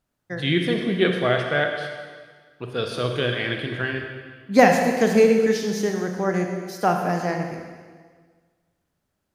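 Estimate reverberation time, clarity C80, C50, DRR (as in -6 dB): 1.6 s, 5.5 dB, 4.0 dB, 3.0 dB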